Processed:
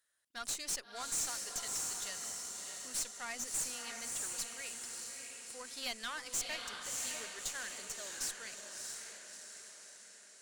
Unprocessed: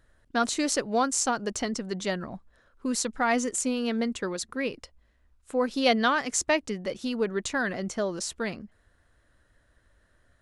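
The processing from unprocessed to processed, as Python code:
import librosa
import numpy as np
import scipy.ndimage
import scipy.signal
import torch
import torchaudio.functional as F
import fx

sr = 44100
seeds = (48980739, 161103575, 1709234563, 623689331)

y = np.diff(x, prepend=0.0)
y = fx.echo_diffused(y, sr, ms=643, feedback_pct=55, wet_db=-5.0)
y = fx.tube_stage(y, sr, drive_db=33.0, bias=0.6)
y = F.gain(torch.from_numpy(y), 1.0).numpy()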